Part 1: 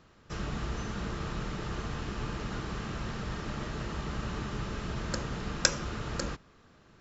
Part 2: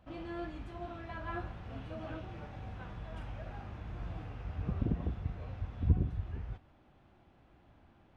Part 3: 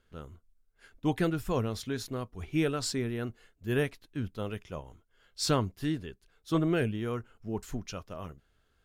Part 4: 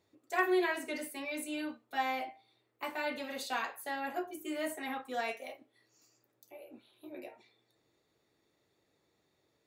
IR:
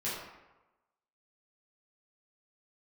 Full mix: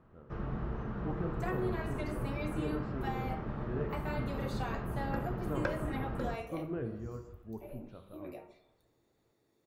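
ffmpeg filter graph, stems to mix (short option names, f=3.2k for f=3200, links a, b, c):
-filter_complex "[0:a]lowpass=1.2k,volume=-3dB,asplit=2[a][b];[b]volume=-12.5dB[c];[1:a]tremolo=f=2.1:d=0.54,adelay=1150,volume=-15.5dB[d];[2:a]lowpass=1.1k,volume=-12.5dB,asplit=2[e][f];[f]volume=-8.5dB[g];[3:a]equalizer=f=3k:w=0.44:g=-7.5,acompressor=threshold=-38dB:ratio=6,adelay=1100,volume=1dB,asplit=2[h][i];[i]volume=-15dB[j];[4:a]atrim=start_sample=2205[k];[c][g][j]amix=inputs=3:normalize=0[l];[l][k]afir=irnorm=-1:irlink=0[m];[a][d][e][h][m]amix=inputs=5:normalize=0,acrossover=split=5000[n][o];[o]acompressor=threshold=-60dB:ratio=4:attack=1:release=60[p];[n][p]amix=inputs=2:normalize=0"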